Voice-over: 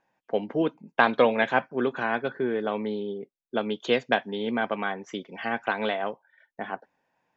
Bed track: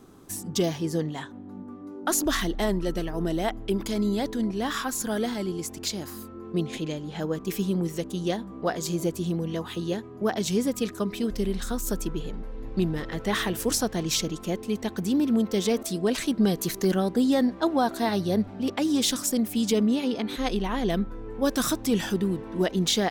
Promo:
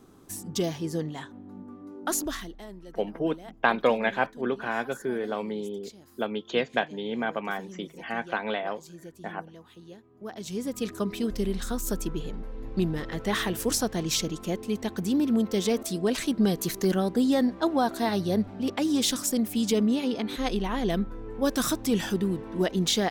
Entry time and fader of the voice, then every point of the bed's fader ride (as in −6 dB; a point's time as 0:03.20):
2.65 s, −2.5 dB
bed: 0:02.16 −3 dB
0:02.64 −18 dB
0:10.02 −18 dB
0:10.94 −1 dB